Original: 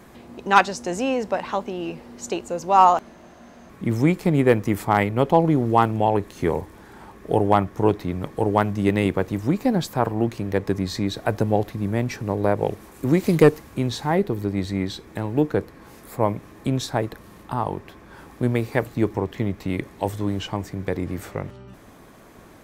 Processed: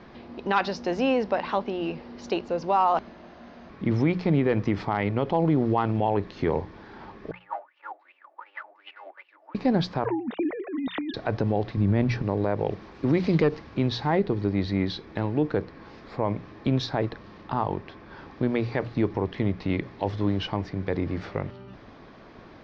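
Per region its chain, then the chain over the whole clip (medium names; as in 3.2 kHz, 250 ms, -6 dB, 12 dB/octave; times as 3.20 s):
7.31–9.55 s: comb filter that takes the minimum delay 3.4 ms + steep high-pass 320 Hz + wah-wah 2.7 Hz 660–2900 Hz, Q 13
10.05–11.14 s: formants replaced by sine waves + compressor with a negative ratio -29 dBFS
11.77–12.22 s: low-pass 6.1 kHz + bass shelf 210 Hz +9 dB
whole clip: steep low-pass 5.2 kHz 48 dB/octave; hum notches 60/120/180 Hz; peak limiter -13 dBFS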